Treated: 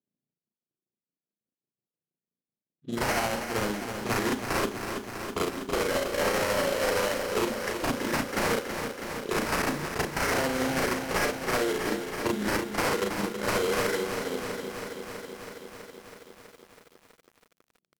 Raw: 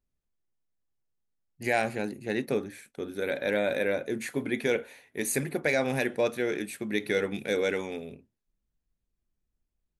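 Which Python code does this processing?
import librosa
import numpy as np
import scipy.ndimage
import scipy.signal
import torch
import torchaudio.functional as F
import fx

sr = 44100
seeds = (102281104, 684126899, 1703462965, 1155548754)

p1 = fx.freq_compress(x, sr, knee_hz=1900.0, ratio=1.5)
p2 = scipy.signal.sosfilt(scipy.signal.butter(4, 150.0, 'highpass', fs=sr, output='sos'), p1)
p3 = fx.env_lowpass(p2, sr, base_hz=510.0, full_db=-24.0)
p4 = fx.high_shelf(p3, sr, hz=4800.0, db=12.0)
p5 = fx.rider(p4, sr, range_db=10, speed_s=2.0)
p6 = p4 + (p5 * librosa.db_to_amplitude(2.5))
p7 = fx.transient(p6, sr, attack_db=10, sustain_db=-7)
p8 = fx.sample_hold(p7, sr, seeds[0], rate_hz=3600.0, jitter_pct=20)
p9 = 10.0 ** (-16.0 / 20.0) * (np.abs((p8 / 10.0 ** (-16.0 / 20.0) + 3.0) % 4.0 - 2.0) - 1.0)
p10 = fx.stretch_grains(p9, sr, factor=1.8, grain_ms=155.0)
p11 = fx.env_lowpass(p10, sr, base_hz=2400.0, full_db=-25.5)
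p12 = p11 + fx.echo_filtered(p11, sr, ms=96, feedback_pct=18, hz=4900.0, wet_db=-24, dry=0)
p13 = fx.echo_crushed(p12, sr, ms=325, feedback_pct=80, bits=8, wet_db=-8)
y = p13 * librosa.db_to_amplitude(-4.5)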